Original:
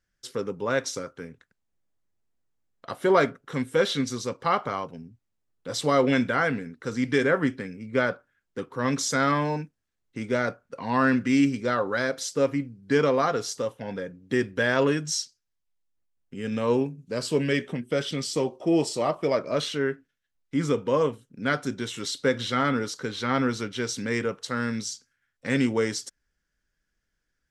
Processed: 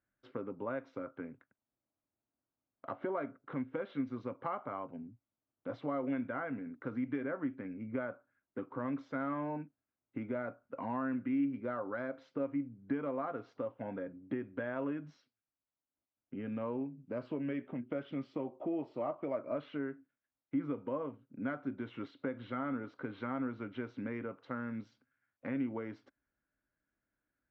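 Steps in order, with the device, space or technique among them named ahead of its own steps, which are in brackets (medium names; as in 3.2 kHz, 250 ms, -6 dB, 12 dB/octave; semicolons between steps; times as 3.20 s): bass amplifier (compression 4:1, threshold -33 dBFS, peak gain reduction 15 dB; cabinet simulation 78–2100 Hz, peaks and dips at 79 Hz -8 dB, 170 Hz -8 dB, 280 Hz +6 dB, 440 Hz -6 dB, 620 Hz +4 dB, 1.8 kHz -7 dB); trim -3 dB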